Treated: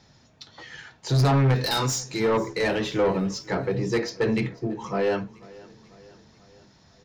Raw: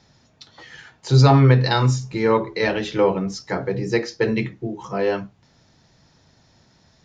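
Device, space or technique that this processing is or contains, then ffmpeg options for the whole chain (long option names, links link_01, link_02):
saturation between pre-emphasis and de-emphasis: -filter_complex "[0:a]asplit=3[link_01][link_02][link_03];[link_01]afade=type=out:start_time=1.54:duration=0.02[link_04];[link_02]bass=frequency=250:gain=-10,treble=frequency=4000:gain=13,afade=type=in:start_time=1.54:duration=0.02,afade=type=out:start_time=2.19:duration=0.02[link_05];[link_03]afade=type=in:start_time=2.19:duration=0.02[link_06];[link_04][link_05][link_06]amix=inputs=3:normalize=0,highshelf=frequency=2000:gain=9,asoftclip=type=tanh:threshold=-16dB,highshelf=frequency=2000:gain=-9,aecho=1:1:493|986|1479|1972:0.0794|0.0445|0.0249|0.0139"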